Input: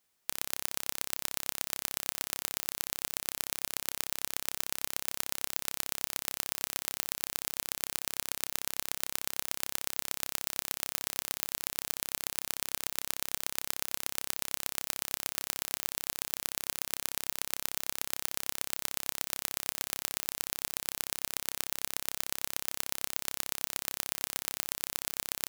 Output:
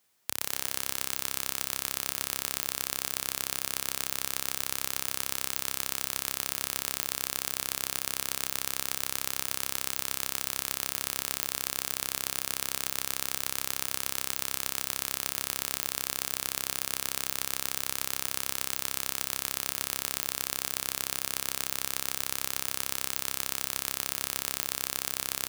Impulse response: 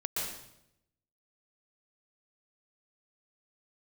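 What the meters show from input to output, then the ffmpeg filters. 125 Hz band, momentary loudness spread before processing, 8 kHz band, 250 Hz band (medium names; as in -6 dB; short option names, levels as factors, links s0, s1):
+4.5 dB, 1 LU, +3.5 dB, +4.0 dB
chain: -filter_complex "[0:a]highpass=72,alimiter=limit=0.473:level=0:latency=1:release=14,asplit=2[s0][s1];[s1]adelay=254,lowpass=f=3700:p=1,volume=0.299,asplit=2[s2][s3];[s3]adelay=254,lowpass=f=3700:p=1,volume=0.55,asplit=2[s4][s5];[s5]adelay=254,lowpass=f=3700:p=1,volume=0.55,asplit=2[s6][s7];[s7]adelay=254,lowpass=f=3700:p=1,volume=0.55,asplit=2[s8][s9];[s9]adelay=254,lowpass=f=3700:p=1,volume=0.55,asplit=2[s10][s11];[s11]adelay=254,lowpass=f=3700:p=1,volume=0.55[s12];[s0][s2][s4][s6][s8][s10][s12]amix=inputs=7:normalize=0,asplit=2[s13][s14];[1:a]atrim=start_sample=2205[s15];[s14][s15]afir=irnorm=-1:irlink=0,volume=0.168[s16];[s13][s16]amix=inputs=2:normalize=0,volume=1.58"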